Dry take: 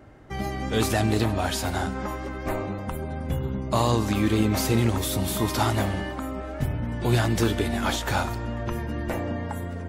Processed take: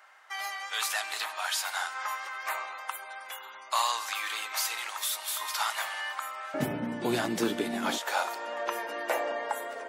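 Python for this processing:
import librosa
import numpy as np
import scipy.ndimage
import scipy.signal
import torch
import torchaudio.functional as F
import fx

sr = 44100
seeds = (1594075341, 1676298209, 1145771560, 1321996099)

y = fx.highpass(x, sr, hz=fx.steps((0.0, 980.0), (6.54, 190.0), (7.98, 510.0)), slope=24)
y = fx.rider(y, sr, range_db=4, speed_s=0.5)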